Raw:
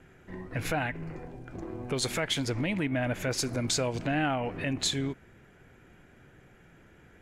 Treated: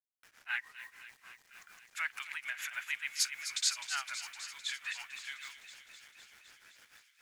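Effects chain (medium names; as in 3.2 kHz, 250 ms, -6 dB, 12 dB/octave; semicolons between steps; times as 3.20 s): in parallel at +2 dB: peak limiter -23.5 dBFS, peak gain reduction 7 dB; on the sum: inverse Chebyshev high-pass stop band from 510 Hz, stop band 50 dB; bit crusher 9-bit; granulator 189 ms, grains 6.7 per s, spray 627 ms; feedback echo behind a high-pass 256 ms, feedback 74%, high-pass 2.3 kHz, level -10 dB; trim -3 dB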